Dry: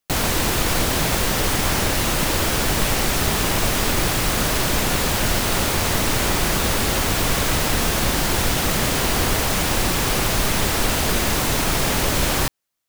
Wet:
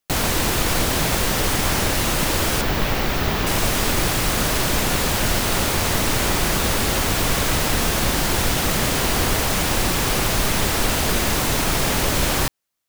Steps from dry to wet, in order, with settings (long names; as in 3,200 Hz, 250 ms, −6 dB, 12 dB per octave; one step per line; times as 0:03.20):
0:02.61–0:03.47: parametric band 9,100 Hz −13 dB 1.2 octaves